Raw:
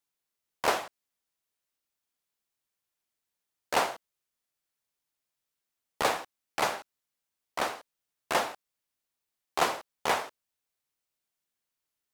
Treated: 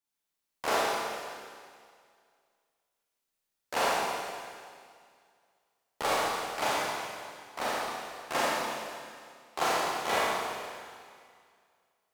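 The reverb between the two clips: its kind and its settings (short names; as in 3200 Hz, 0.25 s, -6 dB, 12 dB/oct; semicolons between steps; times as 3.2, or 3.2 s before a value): Schroeder reverb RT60 2.1 s, combs from 28 ms, DRR -7.5 dB; gain -6.5 dB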